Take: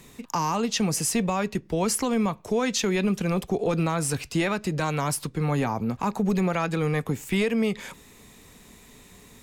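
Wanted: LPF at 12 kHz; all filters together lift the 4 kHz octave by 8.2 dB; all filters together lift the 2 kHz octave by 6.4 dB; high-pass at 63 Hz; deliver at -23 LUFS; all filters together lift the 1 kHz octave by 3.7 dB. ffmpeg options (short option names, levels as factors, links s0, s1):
-af "highpass=63,lowpass=12000,equalizer=f=1000:t=o:g=3,equalizer=f=2000:t=o:g=4.5,equalizer=f=4000:t=o:g=9,volume=1.06"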